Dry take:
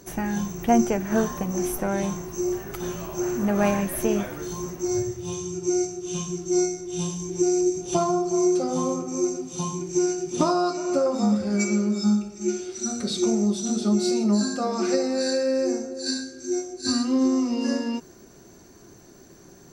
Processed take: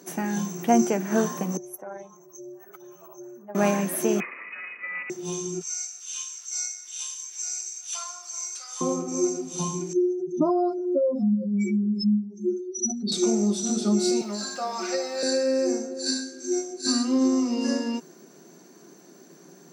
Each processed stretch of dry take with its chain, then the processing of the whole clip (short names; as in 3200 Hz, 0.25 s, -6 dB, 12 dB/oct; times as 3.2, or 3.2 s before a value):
1.57–3.55 spectral contrast raised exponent 1.8 + HPF 730 Hz + AM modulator 220 Hz, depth 45%
4.2–5.1 minimum comb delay 1.3 ms + HPF 170 Hz 24 dB/oct + inverted band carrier 2700 Hz
5.61–8.81 HPF 1400 Hz 24 dB/oct + upward compressor, threshold -38 dBFS
9.93–13.12 spectral contrast raised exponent 2.6 + bell 3900 Hz +9 dB 0.73 oct
14.21–15.23 requantised 8-bit, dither none + three-band isolator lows -16 dB, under 550 Hz, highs -15 dB, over 6800 Hz + comb 5.4 ms, depth 44%
whole clip: elliptic high-pass 160 Hz; dynamic EQ 8000 Hz, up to +4 dB, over -48 dBFS, Q 0.76